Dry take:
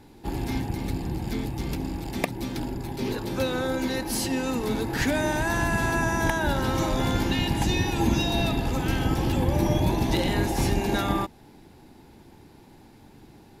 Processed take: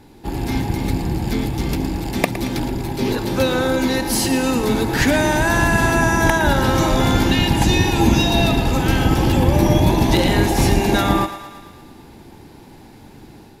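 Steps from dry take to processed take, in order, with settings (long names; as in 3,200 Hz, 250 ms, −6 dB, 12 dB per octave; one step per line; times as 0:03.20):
automatic gain control gain up to 4 dB
on a send: feedback echo with a high-pass in the loop 113 ms, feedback 64%, level −11.5 dB
on the sum: level +4.5 dB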